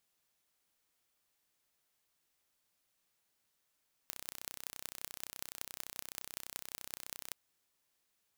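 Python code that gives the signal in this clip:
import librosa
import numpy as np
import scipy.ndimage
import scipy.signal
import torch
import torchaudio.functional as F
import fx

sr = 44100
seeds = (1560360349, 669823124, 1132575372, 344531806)

y = fx.impulse_train(sr, length_s=3.23, per_s=31.7, accent_every=6, level_db=-11.5)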